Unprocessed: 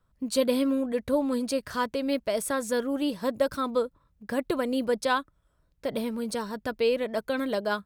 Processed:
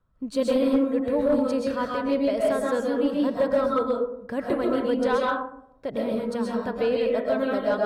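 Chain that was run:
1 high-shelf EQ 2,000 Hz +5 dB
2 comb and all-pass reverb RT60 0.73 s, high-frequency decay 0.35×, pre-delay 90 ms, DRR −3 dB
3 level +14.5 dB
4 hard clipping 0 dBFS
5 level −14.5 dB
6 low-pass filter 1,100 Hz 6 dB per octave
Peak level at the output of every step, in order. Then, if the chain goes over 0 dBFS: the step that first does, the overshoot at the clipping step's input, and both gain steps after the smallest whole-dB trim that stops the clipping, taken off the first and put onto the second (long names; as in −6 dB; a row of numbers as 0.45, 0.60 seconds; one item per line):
−12.0, −8.0, +6.5, 0.0, −14.5, −14.5 dBFS
step 3, 6.5 dB
step 3 +7.5 dB, step 5 −7.5 dB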